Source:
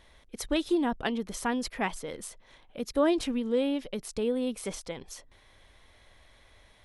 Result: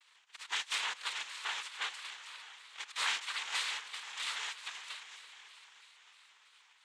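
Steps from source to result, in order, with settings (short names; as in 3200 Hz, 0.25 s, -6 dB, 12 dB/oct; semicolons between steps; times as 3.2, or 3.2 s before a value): spectral contrast lowered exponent 0.23; ladder band-pass 2300 Hz, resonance 35%; diffused feedback echo 0.537 s, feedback 44%, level -12 dB; noise vocoder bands 6; shaped vibrato square 3.1 Hz, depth 100 cents; gain +6 dB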